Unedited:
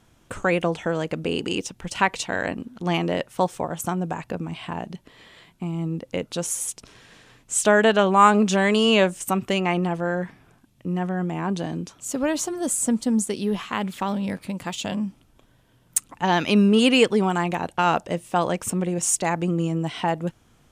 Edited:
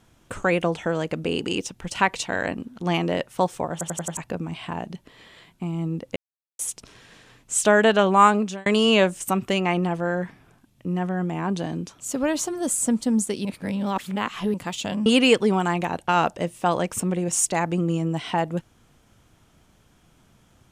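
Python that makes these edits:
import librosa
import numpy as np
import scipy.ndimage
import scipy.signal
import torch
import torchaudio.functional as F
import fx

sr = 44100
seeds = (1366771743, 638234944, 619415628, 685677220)

y = fx.edit(x, sr, fx.stutter_over(start_s=3.72, slice_s=0.09, count=5),
    fx.silence(start_s=6.16, length_s=0.43),
    fx.fade_out_span(start_s=8.22, length_s=0.44),
    fx.reverse_span(start_s=13.45, length_s=1.09),
    fx.cut(start_s=15.06, length_s=1.7), tone=tone)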